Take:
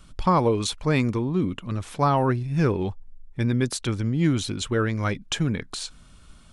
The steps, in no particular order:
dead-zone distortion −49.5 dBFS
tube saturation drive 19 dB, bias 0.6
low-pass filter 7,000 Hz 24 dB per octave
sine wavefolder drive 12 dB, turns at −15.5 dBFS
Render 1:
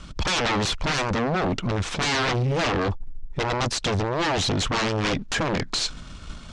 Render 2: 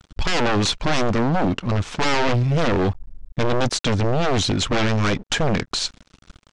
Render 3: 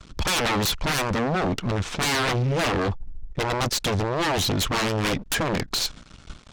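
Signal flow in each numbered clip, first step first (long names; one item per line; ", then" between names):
sine wavefolder, then dead-zone distortion, then tube saturation, then low-pass filter
tube saturation, then dead-zone distortion, then sine wavefolder, then low-pass filter
dead-zone distortion, then low-pass filter, then sine wavefolder, then tube saturation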